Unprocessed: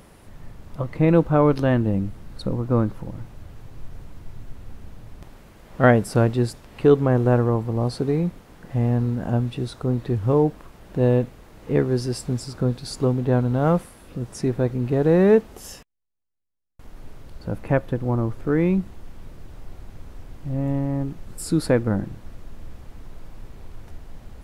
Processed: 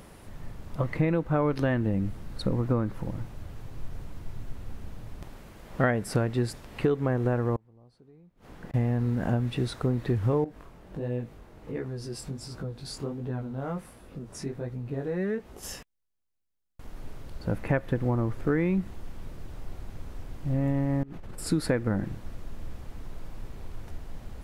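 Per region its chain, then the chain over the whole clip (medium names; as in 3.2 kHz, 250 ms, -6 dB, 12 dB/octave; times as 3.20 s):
7.56–8.74 s: treble shelf 4.9 kHz -6.5 dB + compression 1.5:1, threshold -28 dBFS + inverted gate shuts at -30 dBFS, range -29 dB
10.44–15.63 s: compression 2:1, threshold -34 dBFS + chorus 1.4 Hz, delay 16.5 ms, depth 6.6 ms + tape noise reduction on one side only decoder only
21.03–21.47 s: tone controls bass -3 dB, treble -9 dB + compressor with a negative ratio -39 dBFS
whole clip: compression 12:1, threshold -21 dBFS; dynamic bell 1.9 kHz, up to +6 dB, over -53 dBFS, Q 1.9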